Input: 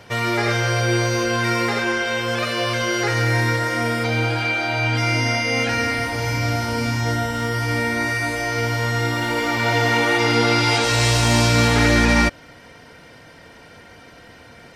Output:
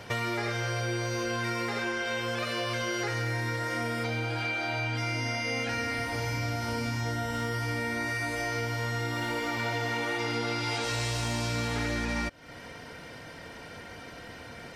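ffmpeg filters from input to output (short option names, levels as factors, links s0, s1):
-af "acompressor=threshold=0.0355:ratio=6"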